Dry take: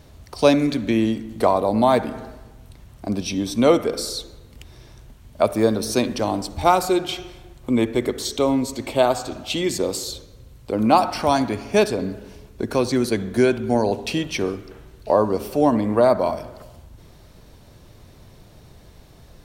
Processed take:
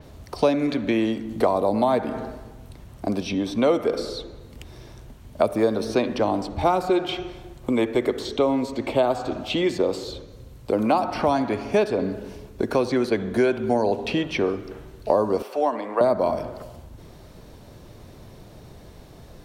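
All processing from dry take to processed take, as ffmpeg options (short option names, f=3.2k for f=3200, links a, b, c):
-filter_complex "[0:a]asettb=1/sr,asplit=3[a][b][c];[a]atrim=end=15.424[d];[b]atrim=start=15.42:end=16.01,asetpts=PTS-STARTPTS,afade=t=in:d=0.004:c=qsin,afade=t=out:st=0.586:d=0.004:c=qsin,highpass=750,aemphasis=mode=reproduction:type=cd[e];[c]atrim=start=16.006[f];[d][e]acrossfade=d=0.004:c1=hsin:c2=qsin[g];[g][f]acrossfade=d=0.004:c1=qsin:c2=hsin,equalizer=f=400:w=0.37:g=5,acrossover=split=440|4000[h][i][j];[h]acompressor=threshold=-25dB:ratio=4[k];[i]acompressor=threshold=-20dB:ratio=4[l];[j]acompressor=threshold=-46dB:ratio=4[m];[k][l][m]amix=inputs=3:normalize=0,adynamicequalizer=threshold=0.00447:dfrequency=5400:dqfactor=0.7:tfrequency=5400:tqfactor=0.7:attack=5:release=100:ratio=0.375:range=2.5:mode=cutabove:tftype=highshelf"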